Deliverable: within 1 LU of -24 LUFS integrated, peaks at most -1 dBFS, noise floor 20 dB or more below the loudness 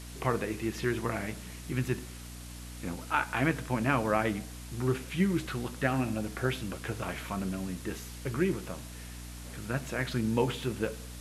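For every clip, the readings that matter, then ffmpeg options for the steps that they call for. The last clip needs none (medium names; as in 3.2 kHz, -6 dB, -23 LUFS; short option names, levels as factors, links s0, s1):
hum 60 Hz; highest harmonic 300 Hz; hum level -43 dBFS; noise floor -44 dBFS; noise floor target -53 dBFS; loudness -32.5 LUFS; peak level -12.0 dBFS; loudness target -24.0 LUFS
-> -af "bandreject=f=60:t=h:w=6,bandreject=f=120:t=h:w=6,bandreject=f=180:t=h:w=6,bandreject=f=240:t=h:w=6,bandreject=f=300:t=h:w=6"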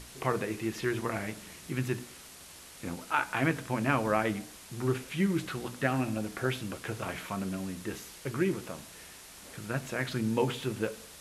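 hum not found; noise floor -50 dBFS; noise floor target -53 dBFS
-> -af "afftdn=nr=6:nf=-50"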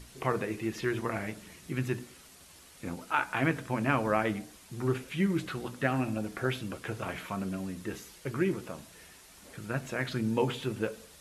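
noise floor -55 dBFS; loudness -33.0 LUFS; peak level -12.5 dBFS; loudness target -24.0 LUFS
-> -af "volume=2.82"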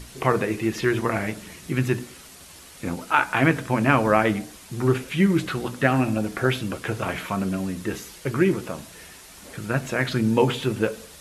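loudness -24.0 LUFS; peak level -3.5 dBFS; noise floor -46 dBFS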